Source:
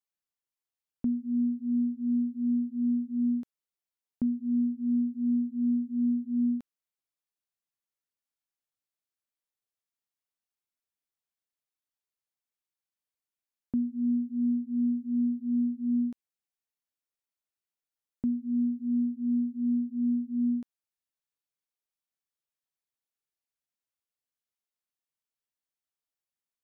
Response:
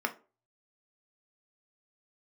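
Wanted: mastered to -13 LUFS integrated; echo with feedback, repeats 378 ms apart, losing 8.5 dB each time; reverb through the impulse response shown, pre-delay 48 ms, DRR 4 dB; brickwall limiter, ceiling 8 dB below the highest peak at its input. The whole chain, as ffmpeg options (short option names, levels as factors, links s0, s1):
-filter_complex "[0:a]alimiter=level_in=1.88:limit=0.0631:level=0:latency=1,volume=0.531,aecho=1:1:378|756|1134|1512:0.376|0.143|0.0543|0.0206,asplit=2[s0][s1];[1:a]atrim=start_sample=2205,adelay=48[s2];[s1][s2]afir=irnorm=-1:irlink=0,volume=0.282[s3];[s0][s3]amix=inputs=2:normalize=0,volume=12.6"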